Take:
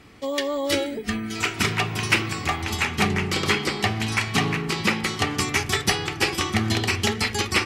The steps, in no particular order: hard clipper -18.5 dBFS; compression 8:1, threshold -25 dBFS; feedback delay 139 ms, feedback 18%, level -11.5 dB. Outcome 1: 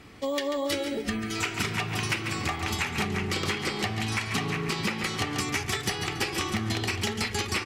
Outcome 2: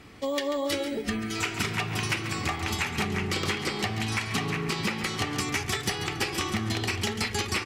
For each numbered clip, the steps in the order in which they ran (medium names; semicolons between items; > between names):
feedback delay > compression > hard clipper; compression > hard clipper > feedback delay